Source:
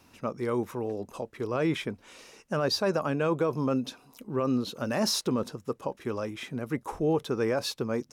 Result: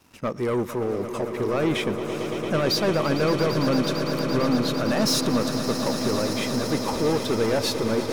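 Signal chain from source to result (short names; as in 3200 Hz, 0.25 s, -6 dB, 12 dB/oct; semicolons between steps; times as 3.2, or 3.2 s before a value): sample leveller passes 2; swelling echo 0.113 s, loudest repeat 8, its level -13 dB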